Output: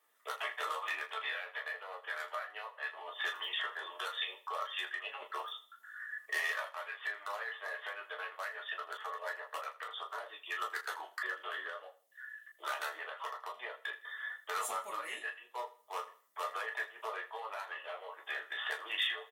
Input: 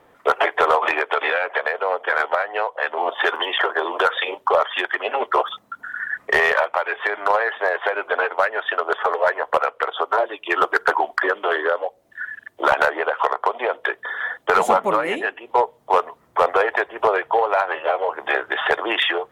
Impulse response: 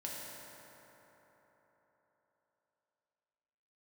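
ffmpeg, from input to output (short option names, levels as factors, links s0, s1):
-filter_complex "[0:a]aderivative,aecho=1:1:80|160|240:0.141|0.0438|0.0136[s0];[1:a]atrim=start_sample=2205,atrim=end_sample=3969,asetrate=88200,aresample=44100[s1];[s0][s1]afir=irnorm=-1:irlink=0,volume=1.41"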